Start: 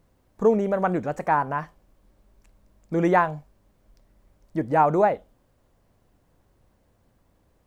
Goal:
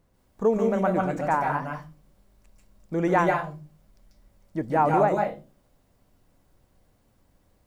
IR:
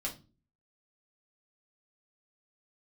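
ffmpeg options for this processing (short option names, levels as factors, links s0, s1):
-filter_complex "[0:a]asplit=2[s0][s1];[1:a]atrim=start_sample=2205,highshelf=f=2600:g=11,adelay=139[s2];[s1][s2]afir=irnorm=-1:irlink=0,volume=0.562[s3];[s0][s3]amix=inputs=2:normalize=0,volume=0.708"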